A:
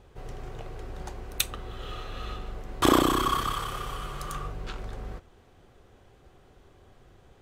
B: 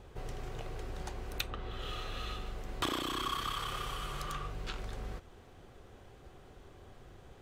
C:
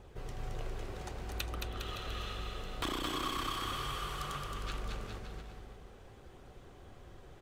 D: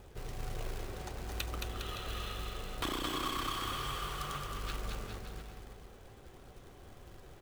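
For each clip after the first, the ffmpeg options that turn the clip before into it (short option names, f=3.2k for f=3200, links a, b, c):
-filter_complex "[0:a]acrossover=split=2000|4800[a][b][c];[a]acompressor=threshold=-39dB:ratio=4[d];[b]acompressor=threshold=-40dB:ratio=4[e];[c]acompressor=threshold=-54dB:ratio=4[f];[d][e][f]amix=inputs=3:normalize=0,volume=1.5dB"
-filter_complex "[0:a]aeval=exprs='clip(val(0),-1,0.0224)':c=same,flanger=delay=0.1:depth=2.3:regen=-71:speed=0.62:shape=triangular,asplit=2[a][b];[b]aecho=0:1:220|407|566|701.1|815.9:0.631|0.398|0.251|0.158|0.1[c];[a][c]amix=inputs=2:normalize=0,volume=2.5dB"
-af "acrusher=bits=3:mode=log:mix=0:aa=0.000001"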